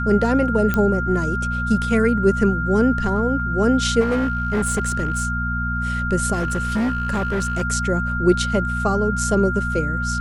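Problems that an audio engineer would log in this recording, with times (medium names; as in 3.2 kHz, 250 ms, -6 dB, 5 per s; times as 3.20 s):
hum 60 Hz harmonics 4 -25 dBFS
whine 1.4 kHz -24 dBFS
0.74 s: pop -8 dBFS
4.00–5.27 s: clipped -16 dBFS
6.33–7.62 s: clipped -17.5 dBFS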